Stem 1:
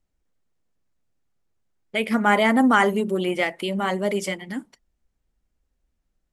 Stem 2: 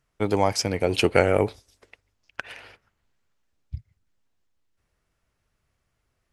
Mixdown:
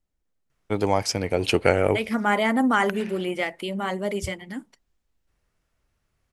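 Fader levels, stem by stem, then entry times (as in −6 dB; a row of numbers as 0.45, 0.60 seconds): −3.5, −0.5 decibels; 0.00, 0.50 seconds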